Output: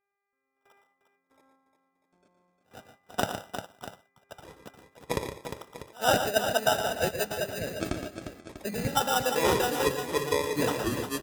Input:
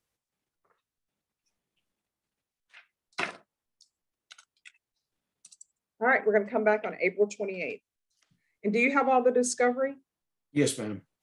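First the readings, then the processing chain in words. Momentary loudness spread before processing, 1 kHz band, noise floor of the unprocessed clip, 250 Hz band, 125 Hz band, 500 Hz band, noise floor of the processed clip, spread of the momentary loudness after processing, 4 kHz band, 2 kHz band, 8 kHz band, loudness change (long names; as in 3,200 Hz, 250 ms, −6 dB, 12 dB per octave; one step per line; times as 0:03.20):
12 LU, +1.5 dB, below −85 dBFS, −2.0 dB, +5.5 dB, −1.0 dB, −81 dBFS, 17 LU, +11.0 dB, −2.0 dB, +3.5 dB, −1.0 dB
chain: in parallel at +1 dB: downward compressor, threshold −36 dBFS, peak gain reduction 16.5 dB
on the sum: sample-rate reduction 2,200 Hz, jitter 0%
high-pass filter 130 Hz 12 dB per octave
harmonic and percussive parts rebalanced harmonic −10 dB
comb filter 1.4 ms, depth 54%
hum with harmonics 400 Hz, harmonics 6, −64 dBFS −2 dB per octave
noise gate with hold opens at −51 dBFS
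echo ahead of the sound 90 ms −24 dB
delay with pitch and tempo change per echo 328 ms, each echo −7 semitones, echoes 2
on a send: multi-tap delay 116/147/353/644 ms −9/−14.5/−8.5/−13.5 dB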